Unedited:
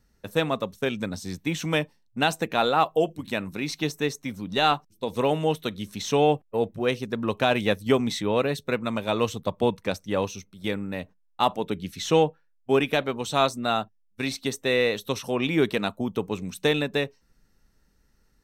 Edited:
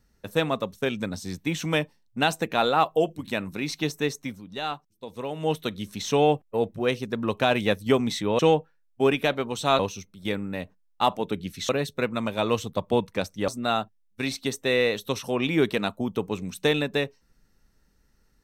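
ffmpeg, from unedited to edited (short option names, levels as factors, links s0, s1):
-filter_complex "[0:a]asplit=7[s0][s1][s2][s3][s4][s5][s6];[s0]atrim=end=4.42,asetpts=PTS-STARTPTS,afade=t=out:st=4.25:d=0.17:silence=0.334965[s7];[s1]atrim=start=4.42:end=5.35,asetpts=PTS-STARTPTS,volume=0.335[s8];[s2]atrim=start=5.35:end=8.392,asetpts=PTS-STARTPTS,afade=t=in:d=0.17:silence=0.334965[s9];[s3]atrim=start=12.078:end=13.482[s10];[s4]atrim=start=10.178:end=12.082[s11];[s5]atrim=start=8.388:end=10.182[s12];[s6]atrim=start=13.478[s13];[s7][s8][s9]concat=n=3:v=0:a=1[s14];[s14][s10]acrossfade=d=0.004:c1=hsin:c2=hsin[s15];[s15][s11]acrossfade=d=0.004:c1=hsin:c2=hsin[s16];[s16][s12]acrossfade=d=0.004:c1=hsin:c2=hsin[s17];[s17][s13]acrossfade=d=0.004:c1=hsin:c2=hsin"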